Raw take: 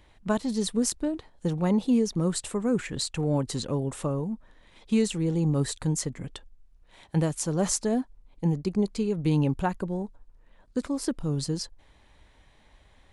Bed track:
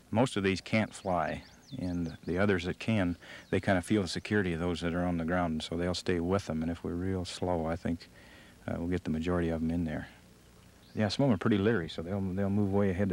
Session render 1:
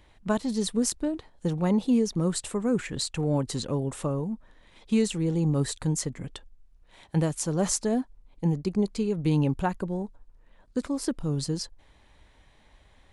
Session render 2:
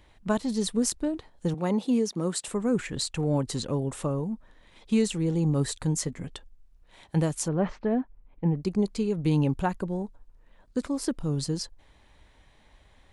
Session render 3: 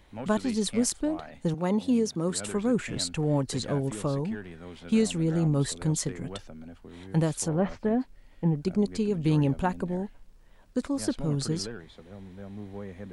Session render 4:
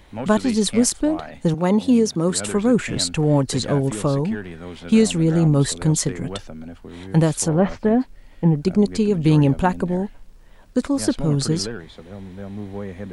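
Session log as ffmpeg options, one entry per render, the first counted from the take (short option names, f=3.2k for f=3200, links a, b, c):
-af anull
-filter_complex "[0:a]asettb=1/sr,asplit=3[a][b][c];[a]atrim=end=1.544[d];[b]atrim=start=1.54:end=2.48,asetpts=PTS-STARTPTS,afade=t=in:d=0.004:c=qsin,afade=t=out:st=0.936:d=0.004:c=qsin,highpass=210[e];[c]atrim=start=2.476[f];[d][e]acrossfade=d=0.004:c1=hsin:c2=qsin[g];[g][f]acrossfade=d=0.004:c1=qsin:c2=hsin,asettb=1/sr,asplit=3[h][i][j];[h]atrim=end=5.954[k];[i]atrim=start=5.95:end=6.35,asetpts=PTS-STARTPTS,afade=t=in:d=0.004:c=qsin,afade=t=out:st=0.396:d=0.004:c=qsin,asplit=2[l][m];[m]adelay=12,volume=-10.5dB[n];[l][n]amix=inputs=2:normalize=0,atrim=end_sample=17640[o];[j]atrim=start=6.346[p];[k][o]acrossfade=d=0.004:c1=hsin:c2=qsin[q];[q][p]acrossfade=d=0.004:c1=qsin:c2=hsin,asettb=1/sr,asplit=3[r][s][t];[r]atrim=end=7.484[u];[s]atrim=start=7.48:end=8.6,asetpts=PTS-STARTPTS,afade=t=in:d=0.004:c=qsin,afade=t=out:st=1.116:d=0.004:c=qsin,lowpass=f=2.6k:w=0.5412,lowpass=f=2.6k:w=1.3066[v];[t]atrim=start=8.596[w];[u][v]acrossfade=d=0.004:c1=hsin:c2=qsin[x];[x][w]acrossfade=d=0.004:c1=qsin:c2=hsin"
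-filter_complex "[1:a]volume=-11.5dB[a];[0:a][a]amix=inputs=2:normalize=0"
-af "volume=8.5dB,alimiter=limit=-3dB:level=0:latency=1"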